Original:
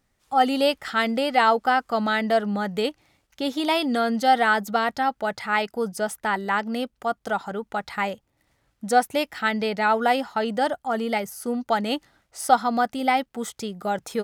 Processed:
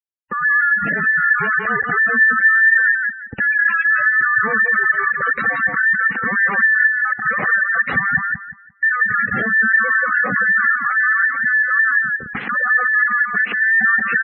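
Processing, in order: every band turned upside down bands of 2 kHz; reverse; compression 12:1, threshold -27 dBFS, peak gain reduction 16.5 dB; reverse; dynamic bell 930 Hz, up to -7 dB, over -51 dBFS, Q 4.8; waveshaping leveller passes 2; Schmitt trigger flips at -43.5 dBFS; cabinet simulation 140–2800 Hz, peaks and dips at 210 Hz +6 dB, 340 Hz -5 dB, 640 Hz -8 dB, 1 kHz -5 dB, 1.8 kHz +7 dB; on a send: feedback delay 174 ms, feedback 25%, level -3 dB; on the sum: spectral gate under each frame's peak -15 dB strong; trim +7.5 dB

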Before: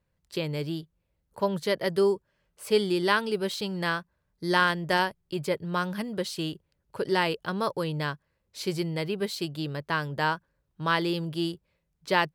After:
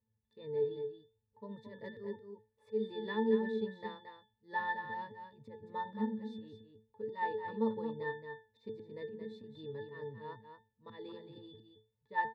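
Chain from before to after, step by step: peaking EQ 360 Hz +8 dB 0.32 oct; slow attack 142 ms; pitch-class resonator A, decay 0.31 s; wow and flutter 26 cents; delay 223 ms -7.5 dB; trim +6 dB

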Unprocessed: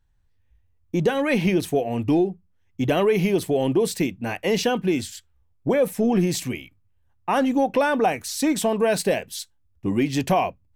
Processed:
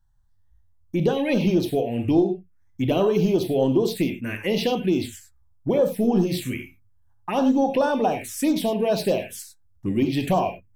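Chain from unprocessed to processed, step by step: gated-style reverb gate 120 ms flat, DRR 5.5 dB; touch-sensitive phaser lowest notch 410 Hz, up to 2.2 kHz, full sweep at -15 dBFS

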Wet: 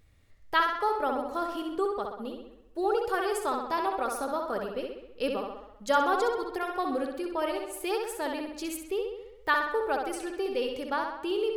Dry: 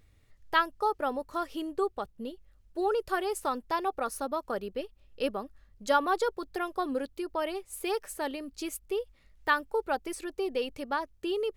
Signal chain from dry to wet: tape echo 65 ms, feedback 63%, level -3.5 dB, low-pass 5.2 kHz

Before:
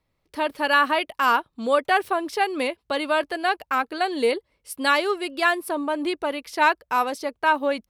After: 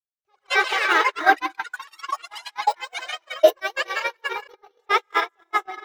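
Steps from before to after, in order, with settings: gated-style reverb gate 430 ms rising, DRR -1 dB; speed mistake 33 rpm record played at 45 rpm; dynamic bell 2.4 kHz, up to -3 dB, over -29 dBFS, Q 0.71; on a send: two-band feedback delay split 340 Hz, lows 148 ms, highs 202 ms, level -14 dB; on the sum: time-frequency box 1.42–3.42 s, 350–770 Hz -20 dB; gate -17 dBFS, range -48 dB; treble shelf 5.6 kHz -7 dB; ever faster or slower copies 97 ms, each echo +5 st, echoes 3, each echo -6 dB; trim +5.5 dB

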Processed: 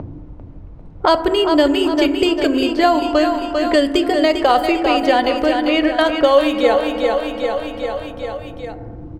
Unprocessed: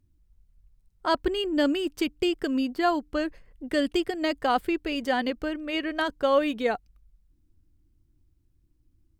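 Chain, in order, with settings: in parallel at -3 dB: upward compressor, threshold -31 dBFS; on the sum: level-controlled noise filter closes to 810 Hz, open at -19 dBFS; fifteen-band graphic EQ 250 Hz -7 dB, 630 Hz +3 dB, 1.6 kHz -4 dB; on a send: feedback delay 397 ms, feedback 46%, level -8 dB; on the sum: FDN reverb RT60 1.4 s, low-frequency decay 1.2×, high-frequency decay 0.25×, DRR 8.5 dB; three bands compressed up and down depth 70%; trim +6 dB

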